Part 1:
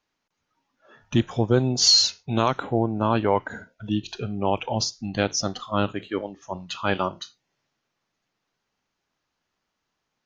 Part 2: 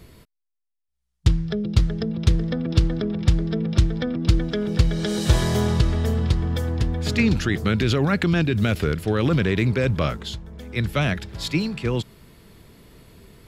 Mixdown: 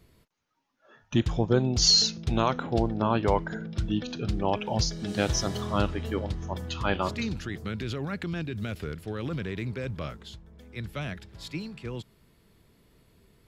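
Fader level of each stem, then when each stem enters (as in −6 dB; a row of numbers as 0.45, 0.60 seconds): −3.5, −12.5 decibels; 0.00, 0.00 seconds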